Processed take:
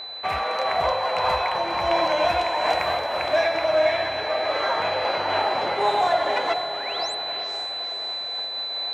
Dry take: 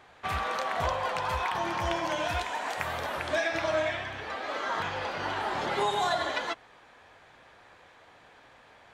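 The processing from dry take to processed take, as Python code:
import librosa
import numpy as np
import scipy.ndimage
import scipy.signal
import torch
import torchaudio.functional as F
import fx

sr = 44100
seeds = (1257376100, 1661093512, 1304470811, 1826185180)

y = x + 10.0 ** (-34.0 / 20.0) * np.sin(2.0 * np.pi * 4000.0 * np.arange(len(x)) / sr)
y = fx.rider(y, sr, range_db=10, speed_s=0.5)
y = 10.0 ** (-19.0 / 20.0) * np.tanh(y / 10.0 ** (-19.0 / 20.0))
y = fx.peak_eq(y, sr, hz=640.0, db=14.0, octaves=1.8)
y = fx.spec_paint(y, sr, seeds[0], shape='rise', start_s=6.44, length_s=0.71, low_hz=250.0, high_hz=9100.0, level_db=-40.0)
y = fx.peak_eq(y, sr, hz=2300.0, db=8.5, octaves=0.6)
y = fx.echo_diffused(y, sr, ms=483, feedback_pct=57, wet_db=-8.0)
y = fx.am_noise(y, sr, seeds[1], hz=5.7, depth_pct=50)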